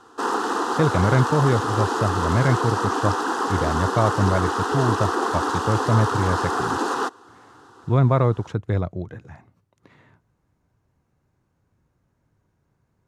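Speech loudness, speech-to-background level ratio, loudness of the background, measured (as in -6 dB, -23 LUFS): -23.0 LUFS, 1.0 dB, -24.0 LUFS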